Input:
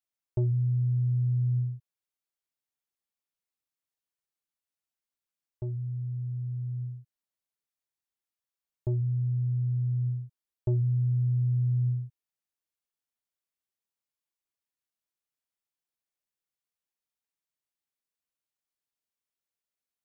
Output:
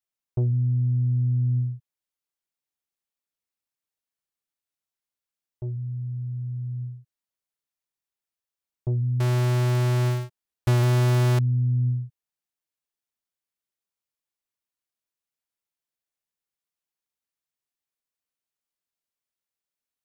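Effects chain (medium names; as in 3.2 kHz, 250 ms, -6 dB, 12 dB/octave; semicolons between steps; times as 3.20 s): 9.20–11.39 s: square wave that keeps the level; dynamic bell 170 Hz, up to +6 dB, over -38 dBFS, Q 1.2; loudspeaker Doppler distortion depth 0.37 ms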